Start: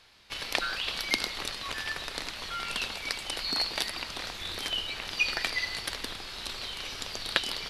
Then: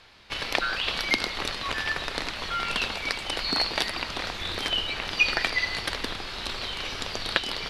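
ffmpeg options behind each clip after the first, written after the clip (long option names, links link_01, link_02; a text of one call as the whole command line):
ffmpeg -i in.wav -filter_complex "[0:a]lowpass=frequency=3100:poles=1,asplit=2[link_01][link_02];[link_02]alimiter=limit=-15.5dB:level=0:latency=1:release=347,volume=0dB[link_03];[link_01][link_03]amix=inputs=2:normalize=0,volume=1.5dB" out.wav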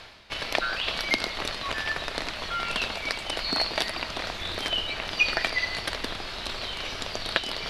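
ffmpeg -i in.wav -af "equalizer=frequency=640:width=5.8:gain=5.5,areverse,acompressor=mode=upward:threshold=-30dB:ratio=2.5,areverse,volume=-1dB" out.wav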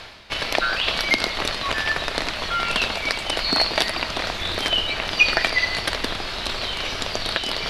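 ffmpeg -i in.wav -af "alimiter=level_in=7.5dB:limit=-1dB:release=50:level=0:latency=1,volume=-1dB" out.wav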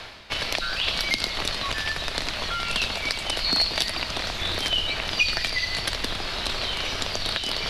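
ffmpeg -i in.wav -filter_complex "[0:a]acrossover=split=180|3000[link_01][link_02][link_03];[link_02]acompressor=threshold=-29dB:ratio=6[link_04];[link_01][link_04][link_03]amix=inputs=3:normalize=0" out.wav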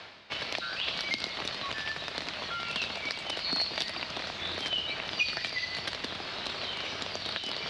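ffmpeg -i in.wav -af "highpass=120,lowpass=5300,volume=-6.5dB" out.wav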